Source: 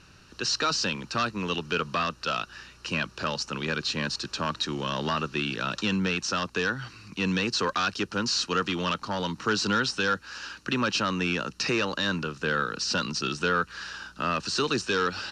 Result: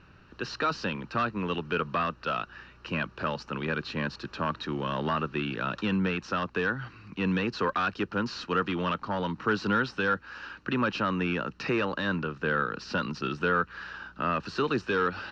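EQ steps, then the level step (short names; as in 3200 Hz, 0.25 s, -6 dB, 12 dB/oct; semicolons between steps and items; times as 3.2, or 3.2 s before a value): LPF 2200 Hz 12 dB/oct; 0.0 dB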